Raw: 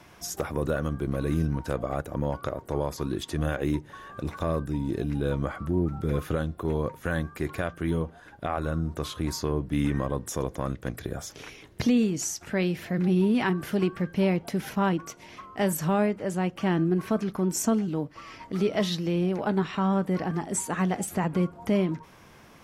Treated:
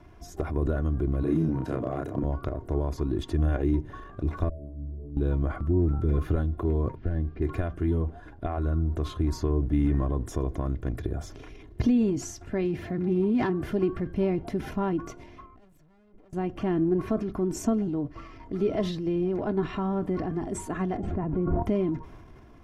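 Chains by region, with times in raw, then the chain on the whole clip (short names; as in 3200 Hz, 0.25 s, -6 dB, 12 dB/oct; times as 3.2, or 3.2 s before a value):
1.23–2.24 HPF 110 Hz 24 dB/oct + doubler 31 ms -2 dB
4.49–5.17 brick-wall FIR band-stop 670–9200 Hz + resonator 72 Hz, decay 1.8 s, mix 100%
6.95–7.42 CVSD 32 kbps + LPF 2000 Hz + bell 1100 Hz -10.5 dB 1.5 oct
12.65–13.66 self-modulated delay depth 0.076 ms + HPF 49 Hz
15.46–16.33 tube stage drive 39 dB, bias 0.7 + level quantiser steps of 19 dB
20.97–21.63 tape spacing loss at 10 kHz 44 dB + sustainer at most 27 dB/s
whole clip: tilt -3.5 dB/oct; comb 2.9 ms, depth 52%; transient shaper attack +2 dB, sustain +7 dB; gain -7.5 dB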